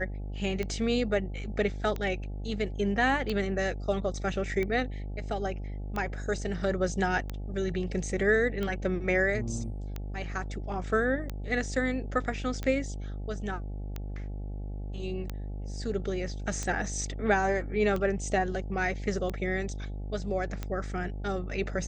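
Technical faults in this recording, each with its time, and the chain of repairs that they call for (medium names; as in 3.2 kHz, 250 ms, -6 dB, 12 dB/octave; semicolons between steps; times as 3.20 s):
buzz 50 Hz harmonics 17 -36 dBFS
tick 45 rpm -20 dBFS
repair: de-click; de-hum 50 Hz, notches 17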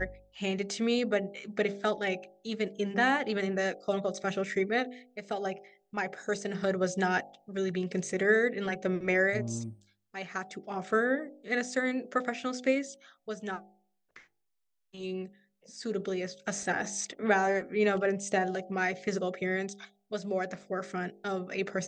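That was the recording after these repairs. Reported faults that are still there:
nothing left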